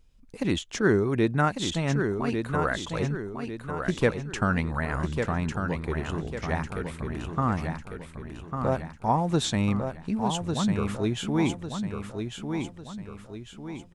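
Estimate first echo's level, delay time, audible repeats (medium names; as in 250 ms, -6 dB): -6.0 dB, 1149 ms, 4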